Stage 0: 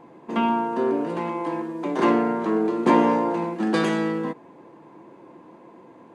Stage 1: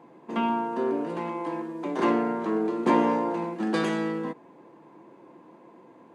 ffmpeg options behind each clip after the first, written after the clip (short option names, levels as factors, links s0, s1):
-af "highpass=110,volume=0.631"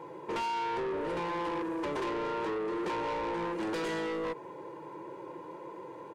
-af "aecho=1:1:2.1:0.91,acompressor=threshold=0.0398:ratio=10,asoftclip=type=tanh:threshold=0.0158,volume=1.78"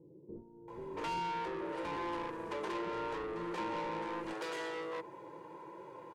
-filter_complex "[0:a]acrossover=split=360[s0][s1];[s1]adelay=680[s2];[s0][s2]amix=inputs=2:normalize=0,volume=0.631"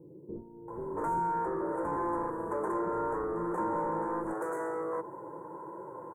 -af "asuperstop=centerf=3600:order=8:qfactor=0.55,volume=2.11"